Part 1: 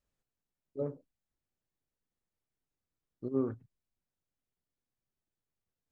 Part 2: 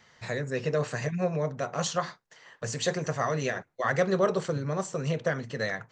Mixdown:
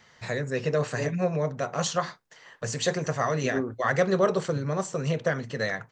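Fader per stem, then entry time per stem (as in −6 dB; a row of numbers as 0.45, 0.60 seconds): +2.0, +2.0 decibels; 0.20, 0.00 seconds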